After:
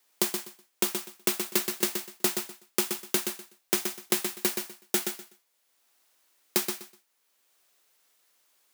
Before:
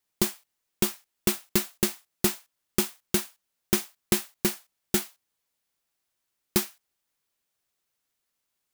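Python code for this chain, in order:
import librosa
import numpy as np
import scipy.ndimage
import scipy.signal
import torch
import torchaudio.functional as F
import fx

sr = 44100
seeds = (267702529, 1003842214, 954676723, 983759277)

y = scipy.signal.sosfilt(scipy.signal.butter(2, 320.0, 'highpass', fs=sr, output='sos'), x)
y = fx.echo_feedback(y, sr, ms=124, feedback_pct=17, wet_db=-7)
y = fx.band_squash(y, sr, depth_pct=40)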